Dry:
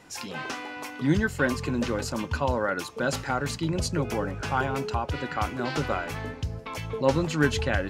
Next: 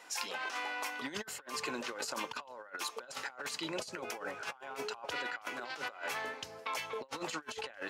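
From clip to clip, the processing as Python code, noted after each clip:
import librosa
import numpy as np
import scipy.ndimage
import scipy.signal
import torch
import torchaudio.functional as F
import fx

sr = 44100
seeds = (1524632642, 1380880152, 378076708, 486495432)

y = scipy.signal.sosfilt(scipy.signal.butter(2, 630.0, 'highpass', fs=sr, output='sos'), x)
y = fx.over_compress(y, sr, threshold_db=-37.0, ratio=-0.5)
y = y * 10.0 ** (-3.5 / 20.0)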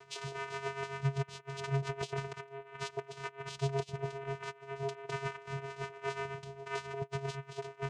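y = fx.vocoder(x, sr, bands=4, carrier='square', carrier_hz=137.0)
y = y * (1.0 - 0.71 / 2.0 + 0.71 / 2.0 * np.cos(2.0 * np.pi * 7.4 * (np.arange(len(y)) / sr)))
y = y * 10.0 ** (5.5 / 20.0)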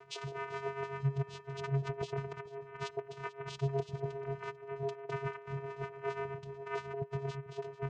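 y = fx.envelope_sharpen(x, sr, power=1.5)
y = fx.echo_feedback(y, sr, ms=443, feedback_pct=30, wet_db=-18.0)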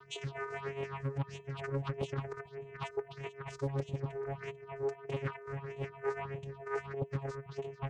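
y = fx.phaser_stages(x, sr, stages=6, low_hz=200.0, high_hz=1400.0, hz=1.6, feedback_pct=25)
y = fx.doppler_dist(y, sr, depth_ms=0.61)
y = y * 10.0 ** (3.0 / 20.0)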